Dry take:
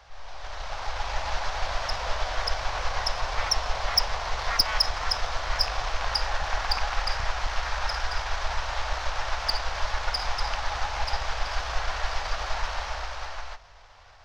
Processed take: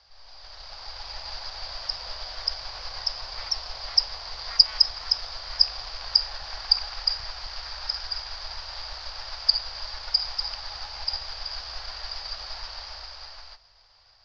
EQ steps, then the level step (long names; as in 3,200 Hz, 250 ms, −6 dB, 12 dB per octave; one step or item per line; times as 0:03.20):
low-pass with resonance 4,800 Hz, resonance Q 14
−12.0 dB